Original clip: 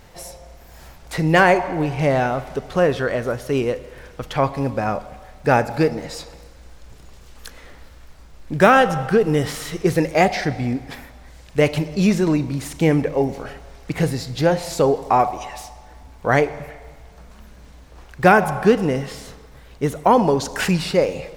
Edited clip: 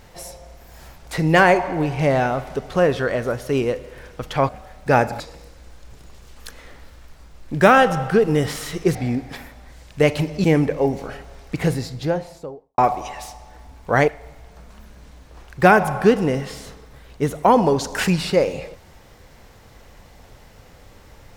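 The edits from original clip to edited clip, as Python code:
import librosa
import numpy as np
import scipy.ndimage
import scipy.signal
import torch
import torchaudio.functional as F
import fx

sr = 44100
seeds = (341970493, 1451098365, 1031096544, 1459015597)

y = fx.studio_fade_out(x, sr, start_s=13.96, length_s=1.18)
y = fx.edit(y, sr, fx.cut(start_s=4.49, length_s=0.58),
    fx.cut(start_s=5.78, length_s=0.41),
    fx.cut(start_s=9.94, length_s=0.59),
    fx.cut(start_s=12.02, length_s=0.78),
    fx.cut(start_s=16.44, length_s=0.25), tone=tone)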